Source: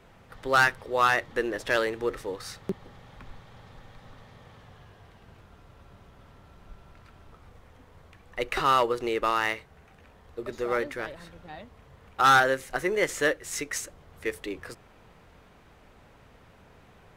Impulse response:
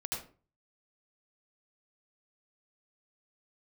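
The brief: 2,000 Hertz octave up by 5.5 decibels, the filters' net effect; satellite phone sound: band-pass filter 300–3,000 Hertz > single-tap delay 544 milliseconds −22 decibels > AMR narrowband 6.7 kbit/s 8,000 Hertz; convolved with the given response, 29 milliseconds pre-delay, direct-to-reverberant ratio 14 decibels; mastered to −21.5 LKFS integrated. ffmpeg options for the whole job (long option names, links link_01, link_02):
-filter_complex "[0:a]equalizer=frequency=2000:width_type=o:gain=8,asplit=2[link_01][link_02];[1:a]atrim=start_sample=2205,adelay=29[link_03];[link_02][link_03]afir=irnorm=-1:irlink=0,volume=-16dB[link_04];[link_01][link_04]amix=inputs=2:normalize=0,highpass=300,lowpass=3000,aecho=1:1:544:0.0794,volume=2.5dB" -ar 8000 -c:a libopencore_amrnb -b:a 6700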